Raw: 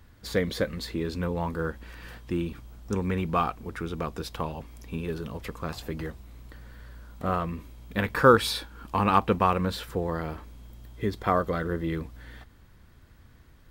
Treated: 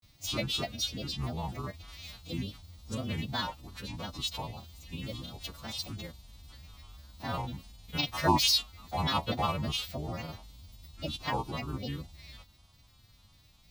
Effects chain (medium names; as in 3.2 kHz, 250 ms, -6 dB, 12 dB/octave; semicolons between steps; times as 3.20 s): partials quantised in pitch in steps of 2 st; granulator, grains 20 per s, spray 15 ms, pitch spread up and down by 7 st; fifteen-band graphic EQ 100 Hz +4 dB, 400 Hz -9 dB, 1.6 kHz -12 dB, 4 kHz +9 dB, 10 kHz -6 dB; trim -4 dB